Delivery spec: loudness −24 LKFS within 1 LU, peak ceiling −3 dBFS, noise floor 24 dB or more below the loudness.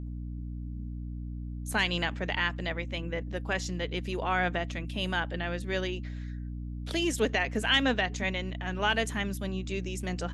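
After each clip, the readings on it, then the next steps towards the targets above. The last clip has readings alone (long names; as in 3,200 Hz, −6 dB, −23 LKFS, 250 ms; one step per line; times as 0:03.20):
mains hum 60 Hz; hum harmonics up to 300 Hz; level of the hum −35 dBFS; integrated loudness −31.5 LKFS; sample peak −11.5 dBFS; target loudness −24.0 LKFS
→ mains-hum notches 60/120/180/240/300 Hz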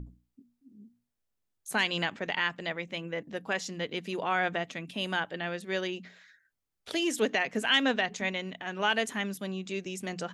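mains hum none found; integrated loudness −31.0 LKFS; sample peak −12.0 dBFS; target loudness −24.0 LKFS
→ level +7 dB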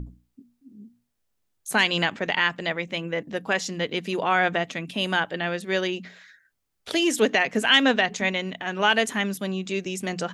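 integrated loudness −24.0 LKFS; sample peak −5.0 dBFS; background noise floor −75 dBFS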